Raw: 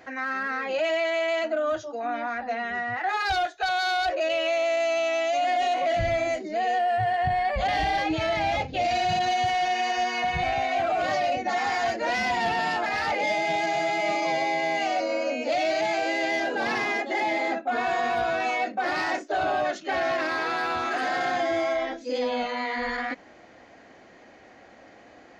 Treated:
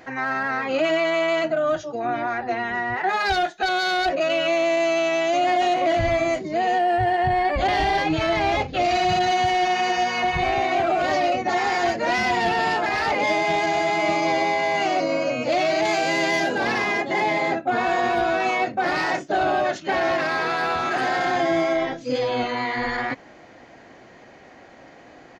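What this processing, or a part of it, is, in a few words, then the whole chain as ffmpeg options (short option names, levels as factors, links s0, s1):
octave pedal: -filter_complex "[0:a]asplit=2[s0][s1];[s1]asetrate=22050,aresample=44100,atempo=2,volume=0.355[s2];[s0][s2]amix=inputs=2:normalize=0,asettb=1/sr,asplit=3[s3][s4][s5];[s3]atrim=end=15.854[s6];[s4]atrim=start=15.85:end=16.58,asetpts=PTS-STARTPTS,afade=t=in:d=0.004:c=qsin,afade=t=out:st=0.726:d=0.004:c=qsin,aemphasis=mode=production:type=cd[s7];[s5]atrim=start=16.576[s8];[s6][s7]acrossfade=d=0.004:c1=hsin:c2=qsin[s9];[s9][s8]acrossfade=d=0.004:c1=qsin:c2=hsin,volume=1.5"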